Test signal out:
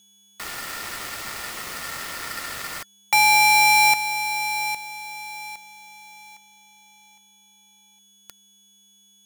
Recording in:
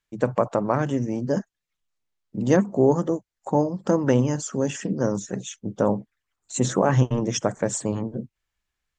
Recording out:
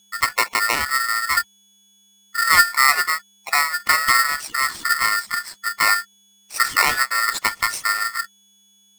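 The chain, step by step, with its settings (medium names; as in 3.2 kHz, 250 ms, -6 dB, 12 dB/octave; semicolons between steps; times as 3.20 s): whistle 5 kHz -54 dBFS; resonant low shelf 130 Hz -14 dB, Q 3; polarity switched at an audio rate 1.6 kHz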